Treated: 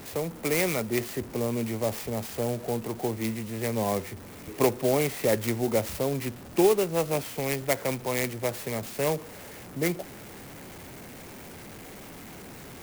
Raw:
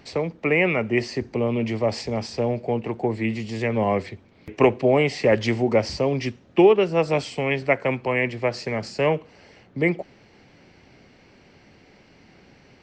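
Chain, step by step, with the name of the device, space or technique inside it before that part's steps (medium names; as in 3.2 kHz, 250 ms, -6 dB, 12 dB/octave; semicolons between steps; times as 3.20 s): early CD player with a faulty converter (jump at every zero crossing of -32.5 dBFS; sampling jitter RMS 0.067 ms); trim -6.5 dB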